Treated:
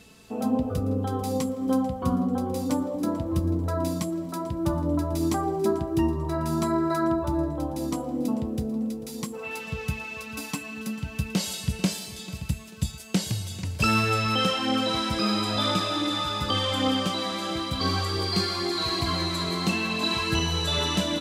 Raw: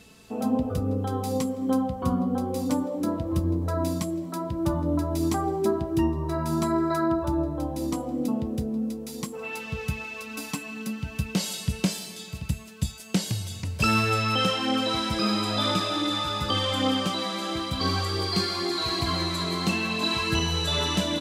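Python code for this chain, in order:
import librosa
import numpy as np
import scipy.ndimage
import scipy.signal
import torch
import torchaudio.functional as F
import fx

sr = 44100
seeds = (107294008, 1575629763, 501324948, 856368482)

y = fx.echo_feedback(x, sr, ms=442, feedback_pct=35, wet_db=-18.0)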